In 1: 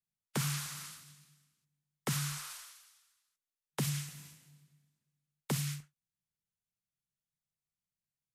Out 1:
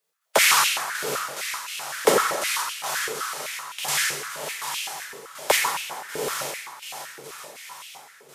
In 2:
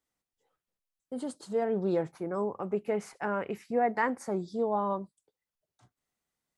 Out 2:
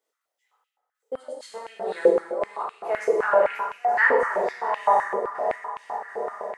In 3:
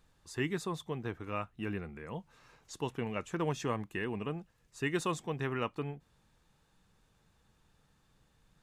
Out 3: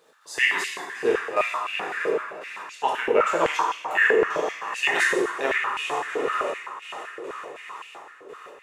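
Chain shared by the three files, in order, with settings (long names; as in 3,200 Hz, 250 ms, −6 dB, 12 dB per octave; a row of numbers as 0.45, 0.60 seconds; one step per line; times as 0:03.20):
feedback delay with all-pass diffusion 765 ms, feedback 54%, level −8.5 dB
gate pattern "x.xxxx...xx..x" 143 BPM −12 dB
dense smooth reverb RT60 1.7 s, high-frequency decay 0.55×, DRR −4.5 dB
high-pass on a step sequencer 7.8 Hz 460–2,700 Hz
loudness normalisation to −24 LKFS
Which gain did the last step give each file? +14.0, +0.5, +8.0 decibels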